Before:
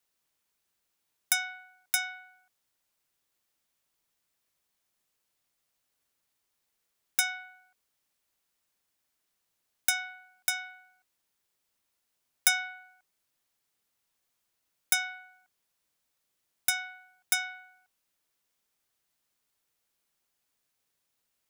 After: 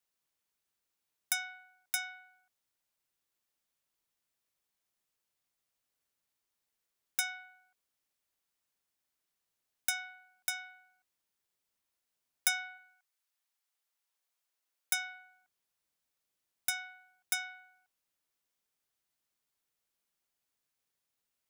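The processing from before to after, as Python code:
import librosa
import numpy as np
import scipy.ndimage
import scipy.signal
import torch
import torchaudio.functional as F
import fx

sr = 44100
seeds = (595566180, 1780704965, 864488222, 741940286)

y = fx.highpass(x, sr, hz=fx.line((12.77, 960.0), (15.13, 360.0)), slope=12, at=(12.77, 15.13), fade=0.02)
y = y * 10.0 ** (-6.0 / 20.0)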